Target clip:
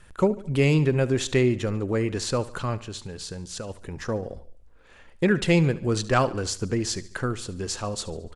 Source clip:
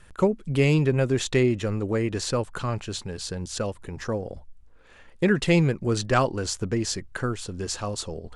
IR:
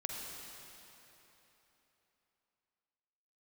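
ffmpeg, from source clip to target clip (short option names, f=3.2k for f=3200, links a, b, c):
-filter_complex "[0:a]asplit=3[a][b][c];[a]afade=t=out:st=2.76:d=0.02[d];[b]acompressor=threshold=-33dB:ratio=4,afade=t=in:st=2.76:d=0.02,afade=t=out:st=3.69:d=0.02[e];[c]afade=t=in:st=3.69:d=0.02[f];[d][e][f]amix=inputs=3:normalize=0,asplit=2[g][h];[h]aecho=0:1:72|144|216|288:0.126|0.0642|0.0327|0.0167[i];[g][i]amix=inputs=2:normalize=0"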